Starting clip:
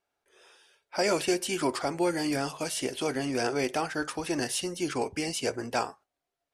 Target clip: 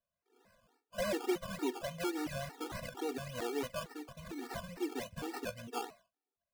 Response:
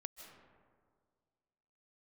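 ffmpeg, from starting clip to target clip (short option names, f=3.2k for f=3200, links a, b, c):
-filter_complex "[0:a]asplit=2[a][b];[1:a]atrim=start_sample=2205,afade=t=out:st=0.24:d=0.01,atrim=end_sample=11025[c];[b][c]afir=irnorm=-1:irlink=0,volume=-12dB[d];[a][d]amix=inputs=2:normalize=0,asettb=1/sr,asplit=3[e][f][g];[e]atrim=end=3.834[h];[f]atrim=start=3.83:end=4.69,asetpts=PTS-STARTPTS,afade=t=in:d=0.004:c=qsin,afade=t=out:st=0.856:d=0.004:c=qsin,acrossover=split=250|3000[i][j][k];[j]acompressor=threshold=-40dB:ratio=6[l];[i][l][k]amix=inputs=3:normalize=0[m];[g]atrim=start=4.686[n];[h][m]acrossfade=d=0.004:c1=hsin:c2=qsin[o];[o][n]acrossfade=d=0.004:c1=qsin:c2=hsin,equalizer=f=1.3k:w=1.5:g=-5.5,acrusher=samples=18:mix=1:aa=0.000001:lfo=1:lforange=10.8:lforate=3.5,afftfilt=real='re*gt(sin(2*PI*2.2*pts/sr)*(1-2*mod(floor(b*sr/1024/240),2)),0)':imag='im*gt(sin(2*PI*2.2*pts/sr)*(1-2*mod(floor(b*sr/1024/240),2)),0)':win_size=1024:overlap=0.75,volume=-6.5dB"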